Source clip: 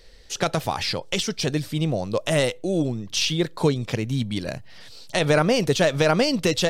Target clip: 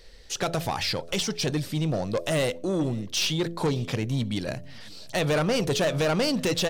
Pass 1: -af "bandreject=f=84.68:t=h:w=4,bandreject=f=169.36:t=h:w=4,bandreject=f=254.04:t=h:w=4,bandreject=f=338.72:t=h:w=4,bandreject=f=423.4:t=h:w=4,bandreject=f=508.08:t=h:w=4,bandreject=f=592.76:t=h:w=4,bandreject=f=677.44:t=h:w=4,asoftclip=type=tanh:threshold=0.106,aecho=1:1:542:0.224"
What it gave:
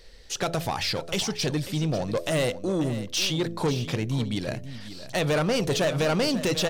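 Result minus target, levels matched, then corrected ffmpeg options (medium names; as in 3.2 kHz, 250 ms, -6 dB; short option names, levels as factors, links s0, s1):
echo-to-direct +11.5 dB
-af "bandreject=f=84.68:t=h:w=4,bandreject=f=169.36:t=h:w=4,bandreject=f=254.04:t=h:w=4,bandreject=f=338.72:t=h:w=4,bandreject=f=423.4:t=h:w=4,bandreject=f=508.08:t=h:w=4,bandreject=f=592.76:t=h:w=4,bandreject=f=677.44:t=h:w=4,asoftclip=type=tanh:threshold=0.106,aecho=1:1:542:0.0596"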